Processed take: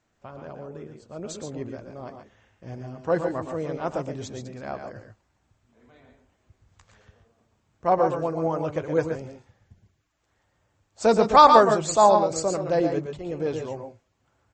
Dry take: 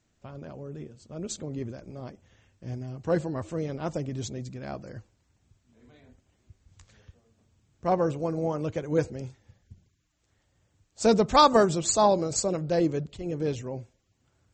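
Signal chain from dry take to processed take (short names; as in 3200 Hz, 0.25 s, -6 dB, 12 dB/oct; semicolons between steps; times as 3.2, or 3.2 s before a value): bell 980 Hz +10.5 dB 2.7 oct; on a send: tapped delay 0.118/0.137 s -8/-9.5 dB; on the sum: gain -4.5 dB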